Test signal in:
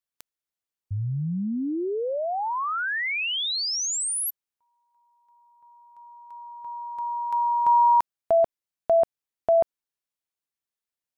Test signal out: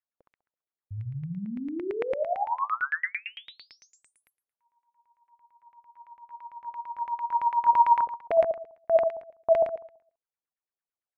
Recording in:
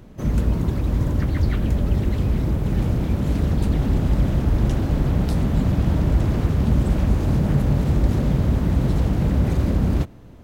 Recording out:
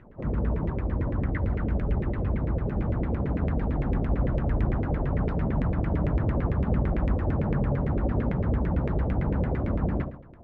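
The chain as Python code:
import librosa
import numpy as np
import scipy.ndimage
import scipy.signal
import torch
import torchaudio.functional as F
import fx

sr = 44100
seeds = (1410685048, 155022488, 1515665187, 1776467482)

y = fx.room_flutter(x, sr, wall_m=11.4, rt60_s=0.56)
y = fx.filter_lfo_lowpass(y, sr, shape='saw_down', hz=8.9, low_hz=420.0, high_hz=2200.0, q=3.8)
y = y * librosa.db_to_amplitude(-8.0)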